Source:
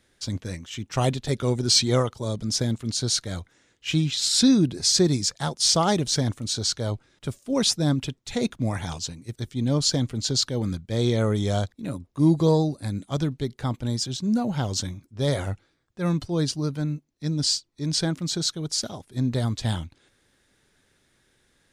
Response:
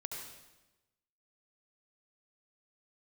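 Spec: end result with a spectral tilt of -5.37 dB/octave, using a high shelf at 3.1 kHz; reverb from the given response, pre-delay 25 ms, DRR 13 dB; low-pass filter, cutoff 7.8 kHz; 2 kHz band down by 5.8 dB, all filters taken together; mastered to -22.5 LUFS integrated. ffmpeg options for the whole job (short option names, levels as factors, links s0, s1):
-filter_complex "[0:a]lowpass=7800,equalizer=f=2000:t=o:g=-5.5,highshelf=f=3100:g=-6.5,asplit=2[s0][s1];[1:a]atrim=start_sample=2205,adelay=25[s2];[s1][s2]afir=irnorm=-1:irlink=0,volume=0.237[s3];[s0][s3]amix=inputs=2:normalize=0,volume=1.5"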